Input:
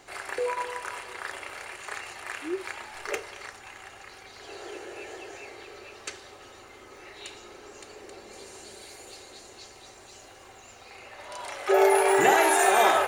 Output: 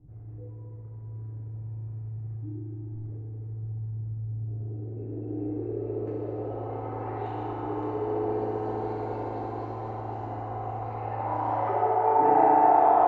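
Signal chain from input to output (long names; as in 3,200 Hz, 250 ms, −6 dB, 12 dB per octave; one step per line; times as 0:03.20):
low-shelf EQ 400 Hz +7.5 dB
downward compressor 3 to 1, threshold −38 dBFS, peak gain reduction 18 dB
low-pass filter sweep 130 Hz → 930 Hz, 0:04.27–0:06.90
on a send: bucket-brigade delay 63 ms, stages 1,024, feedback 78%, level −15 dB
on the sum: feedback delay network reverb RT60 3 s, high-frequency decay 0.9×, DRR −8 dB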